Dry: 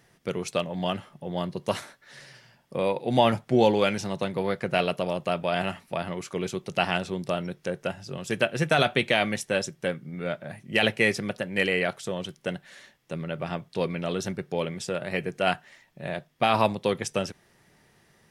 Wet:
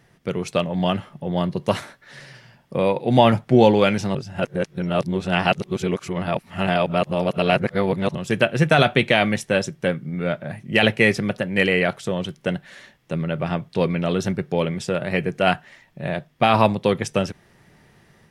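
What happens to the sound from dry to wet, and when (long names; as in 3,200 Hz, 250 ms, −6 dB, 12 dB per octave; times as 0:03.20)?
0:04.15–0:08.15: reverse
whole clip: bass and treble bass +4 dB, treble −5 dB; automatic gain control gain up to 3 dB; level +3 dB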